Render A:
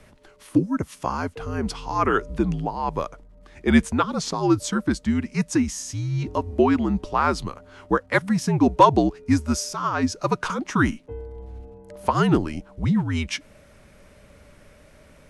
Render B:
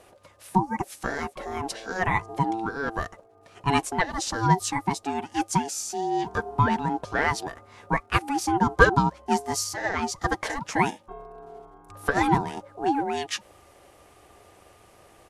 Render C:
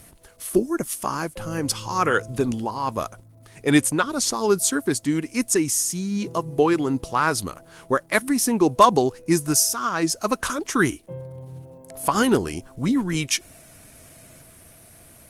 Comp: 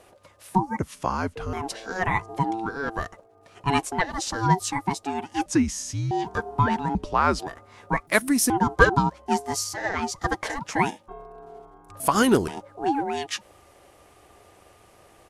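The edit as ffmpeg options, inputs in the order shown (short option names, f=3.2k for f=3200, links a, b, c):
-filter_complex "[0:a]asplit=3[a][b][c];[2:a]asplit=2[d][e];[1:a]asplit=6[f][g][h][i][j][k];[f]atrim=end=0.792[l];[a]atrim=start=0.788:end=1.532[m];[g]atrim=start=1.528:end=5.462[n];[b]atrim=start=5.458:end=6.112[o];[h]atrim=start=6.108:end=6.952[p];[c]atrim=start=6.948:end=7.392[q];[i]atrim=start=7.388:end=8.072[r];[d]atrim=start=8.068:end=8.502[s];[j]atrim=start=8.498:end=12.002[t];[e]atrim=start=11.998:end=12.482[u];[k]atrim=start=12.478[v];[l][m]acrossfade=d=0.004:c1=hsin:c2=hsin[w];[w][n]acrossfade=d=0.004:c1=hsin:c2=hsin[x];[x][o]acrossfade=d=0.004:c1=hsin:c2=hsin[y];[y][p]acrossfade=d=0.004:c1=hsin:c2=hsin[z];[z][q]acrossfade=d=0.004:c1=hsin:c2=hsin[aa];[aa][r]acrossfade=d=0.004:c1=hsin:c2=hsin[ab];[ab][s]acrossfade=d=0.004:c1=hsin:c2=hsin[ac];[ac][t]acrossfade=d=0.004:c1=hsin:c2=hsin[ad];[ad][u]acrossfade=d=0.004:c1=hsin:c2=hsin[ae];[ae][v]acrossfade=d=0.004:c1=hsin:c2=hsin"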